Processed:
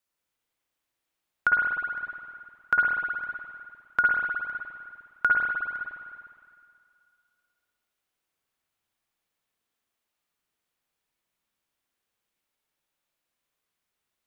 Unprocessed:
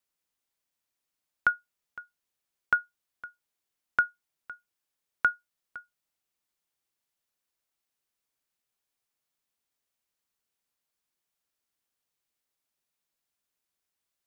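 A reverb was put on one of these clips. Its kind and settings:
spring reverb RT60 2.2 s, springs 51/60 ms, chirp 35 ms, DRR −4 dB

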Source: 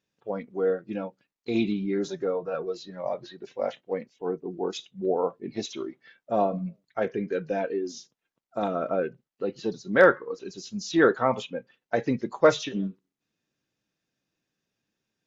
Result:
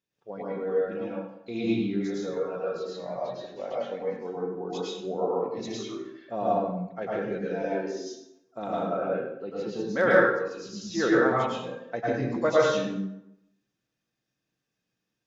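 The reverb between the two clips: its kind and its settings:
dense smooth reverb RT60 0.81 s, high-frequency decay 0.7×, pre-delay 90 ms, DRR −6.5 dB
level −8 dB

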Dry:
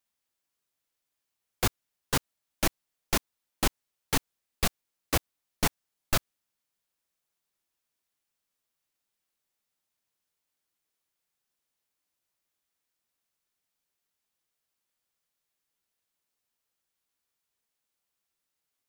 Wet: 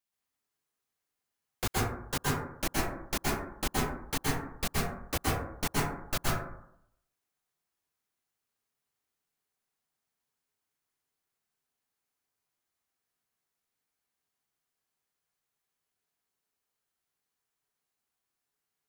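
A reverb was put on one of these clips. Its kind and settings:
dense smooth reverb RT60 0.74 s, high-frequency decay 0.3×, pre-delay 110 ms, DRR −5.5 dB
level −6.5 dB

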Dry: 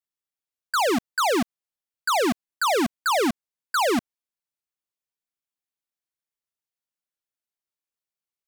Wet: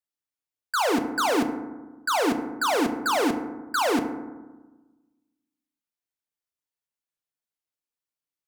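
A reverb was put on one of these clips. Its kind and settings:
feedback delay network reverb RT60 1.2 s, low-frequency decay 1.3×, high-frequency decay 0.35×, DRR 6 dB
level −2.5 dB

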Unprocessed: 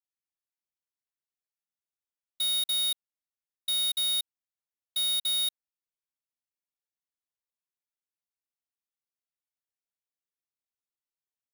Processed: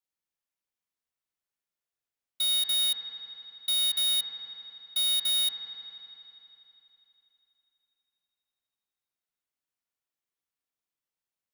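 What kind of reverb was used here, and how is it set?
spring reverb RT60 3.3 s, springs 46 ms, chirp 50 ms, DRR 1 dB
level +1 dB

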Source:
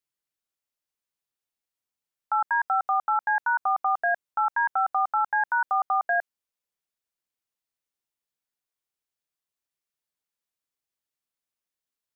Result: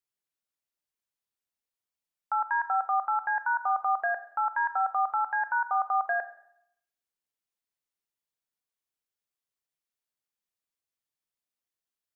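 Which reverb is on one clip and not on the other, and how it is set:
four-comb reverb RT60 0.73 s, combs from 31 ms, DRR 11 dB
level −3.5 dB

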